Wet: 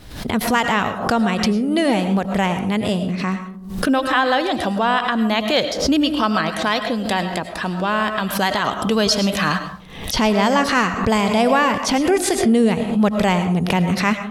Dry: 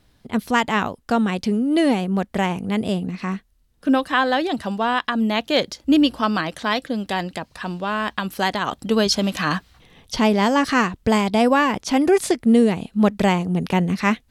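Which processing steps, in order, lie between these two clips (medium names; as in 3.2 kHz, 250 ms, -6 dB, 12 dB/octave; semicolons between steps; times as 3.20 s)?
dynamic bell 300 Hz, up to -5 dB, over -30 dBFS, Q 1.4; in parallel at +1 dB: peak limiter -14.5 dBFS, peak gain reduction 9 dB; on the sum: algorithmic reverb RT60 0.56 s, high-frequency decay 0.35×, pre-delay 65 ms, DRR 8.5 dB; swell ahead of each attack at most 76 dB/s; trim -2.5 dB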